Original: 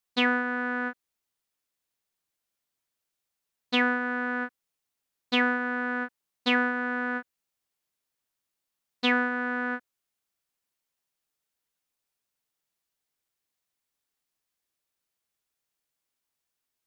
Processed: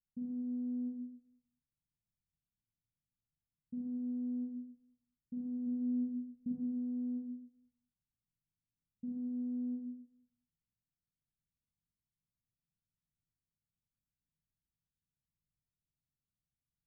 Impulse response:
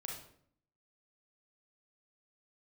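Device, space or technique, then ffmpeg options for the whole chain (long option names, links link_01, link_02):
club heard from the street: -filter_complex "[0:a]asplit=3[link_01][link_02][link_03];[link_01]afade=type=out:start_time=5.66:duration=0.02[link_04];[link_02]bass=frequency=250:gain=8,treble=frequency=4000:gain=7,afade=type=in:start_time=5.66:duration=0.02,afade=type=out:start_time=6.51:duration=0.02[link_05];[link_03]afade=type=in:start_time=6.51:duration=0.02[link_06];[link_04][link_05][link_06]amix=inputs=3:normalize=0,alimiter=limit=-20.5dB:level=0:latency=1:release=280,lowpass=frequency=200:width=0.5412,lowpass=frequency=200:width=1.3066[link_07];[1:a]atrim=start_sample=2205[link_08];[link_07][link_08]afir=irnorm=-1:irlink=0,volume=9dB"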